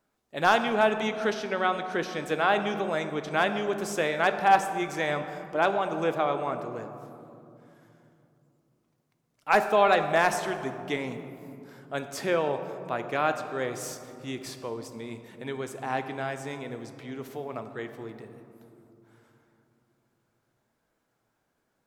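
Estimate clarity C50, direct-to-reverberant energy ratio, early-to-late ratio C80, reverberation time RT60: 9.0 dB, 7.5 dB, 10.0 dB, 2.8 s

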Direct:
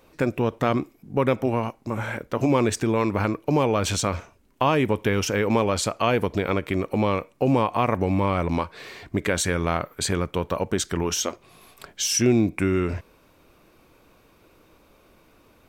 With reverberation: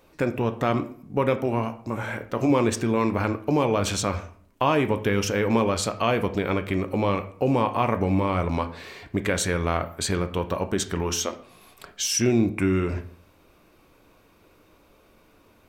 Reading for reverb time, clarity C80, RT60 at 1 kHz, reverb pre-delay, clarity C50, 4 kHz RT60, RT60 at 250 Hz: 0.55 s, 17.5 dB, 0.55 s, 6 ms, 14.5 dB, 0.40 s, 0.60 s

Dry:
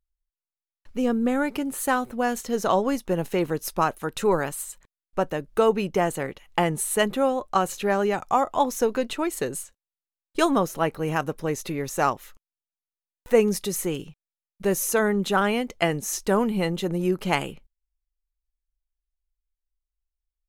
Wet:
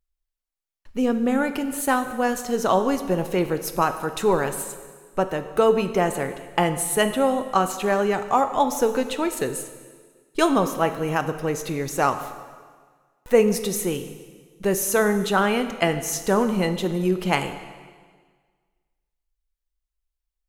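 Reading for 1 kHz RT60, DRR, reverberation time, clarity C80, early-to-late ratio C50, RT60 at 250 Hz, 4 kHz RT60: 1.6 s, 8.5 dB, 1.6 s, 11.5 dB, 10.5 dB, 1.6 s, 1.5 s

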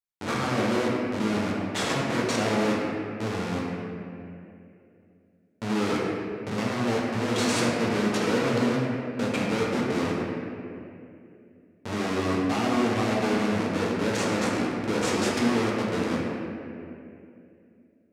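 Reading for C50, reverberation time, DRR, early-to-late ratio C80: -1.0 dB, 2.7 s, -5.0 dB, 0.5 dB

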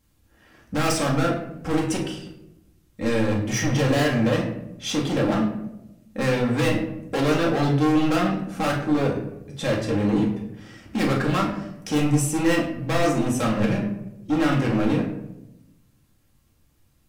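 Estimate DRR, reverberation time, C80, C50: -3.0 dB, 0.90 s, 9.5 dB, 6.5 dB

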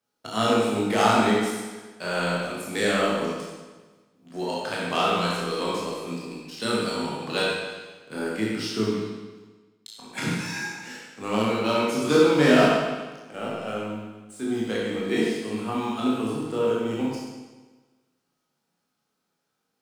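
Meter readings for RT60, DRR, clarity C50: 1.3 s, -6.0 dB, -2.0 dB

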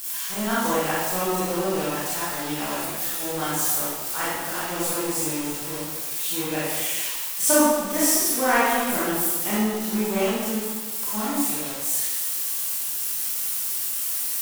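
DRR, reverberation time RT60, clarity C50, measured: -10.0 dB, 1.4 s, -3.5 dB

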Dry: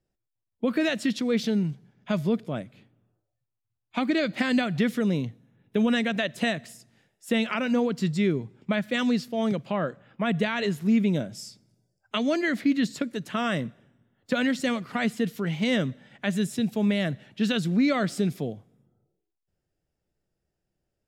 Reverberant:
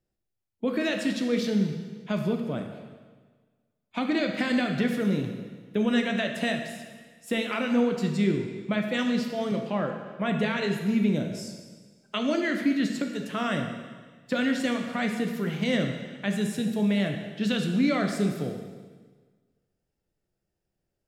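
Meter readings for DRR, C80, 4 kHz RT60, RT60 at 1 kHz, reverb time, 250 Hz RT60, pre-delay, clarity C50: 3.5 dB, 7.0 dB, 1.4 s, 1.4 s, 1.5 s, 1.5 s, 6 ms, 5.5 dB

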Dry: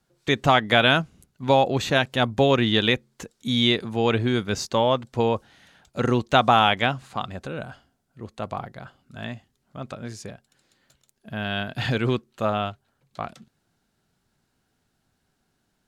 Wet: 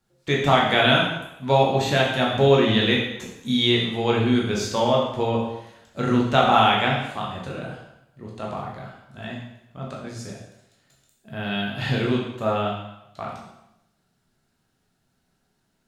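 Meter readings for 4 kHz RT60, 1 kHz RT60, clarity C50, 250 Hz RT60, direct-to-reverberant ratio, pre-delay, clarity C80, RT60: 0.80 s, 0.85 s, 3.0 dB, 0.80 s, -3.0 dB, 6 ms, 5.5 dB, 0.85 s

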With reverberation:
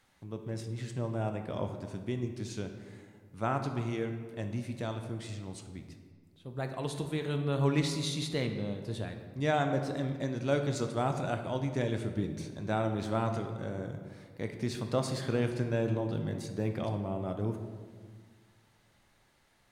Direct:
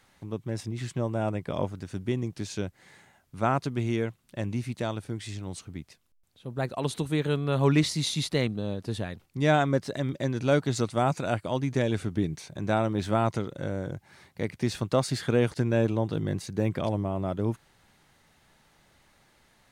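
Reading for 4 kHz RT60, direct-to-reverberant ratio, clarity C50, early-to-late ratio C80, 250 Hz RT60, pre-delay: 1.0 s, 5.5 dB, 7.5 dB, 9.0 dB, 2.0 s, 8 ms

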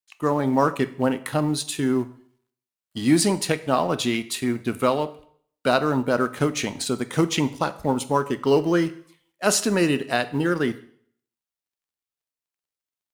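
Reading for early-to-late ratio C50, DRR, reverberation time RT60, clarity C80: 16.5 dB, 11.5 dB, 0.55 s, 19.5 dB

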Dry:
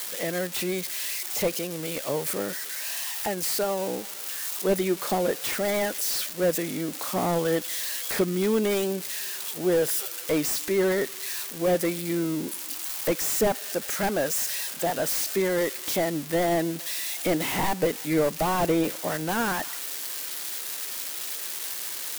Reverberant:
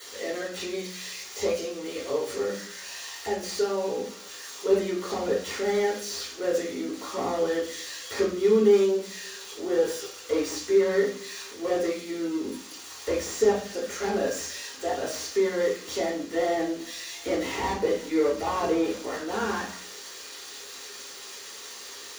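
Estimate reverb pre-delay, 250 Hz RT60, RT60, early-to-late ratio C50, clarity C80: 3 ms, 0.55 s, 0.50 s, 5.5 dB, 11.5 dB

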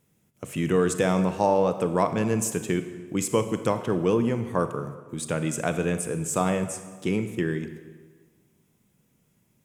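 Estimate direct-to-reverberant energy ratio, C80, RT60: 9.5 dB, 12.0 dB, 1.5 s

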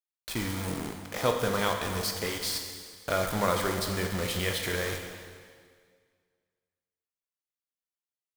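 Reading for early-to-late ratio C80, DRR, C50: 6.5 dB, 3.0 dB, 5.0 dB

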